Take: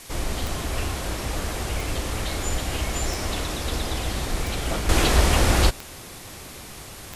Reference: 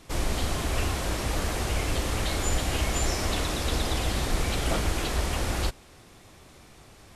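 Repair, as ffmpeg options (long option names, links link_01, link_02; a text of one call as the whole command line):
ffmpeg -i in.wav -af "adeclick=threshold=4,afwtdn=0.0079,asetnsamples=nb_out_samples=441:pad=0,asendcmd='4.89 volume volume -9.5dB',volume=0dB" out.wav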